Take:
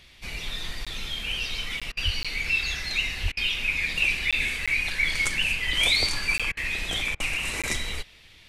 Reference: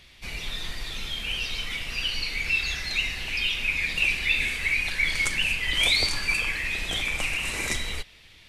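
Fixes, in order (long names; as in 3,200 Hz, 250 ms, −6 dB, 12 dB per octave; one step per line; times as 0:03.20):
high-pass at the plosives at 0:02.04/0:03.22
repair the gap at 0:00.85/0:01.80/0:02.23/0:04.31/0:04.66/0:06.38/0:07.62, 16 ms
repair the gap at 0:01.92/0:03.32/0:06.52/0:07.15, 49 ms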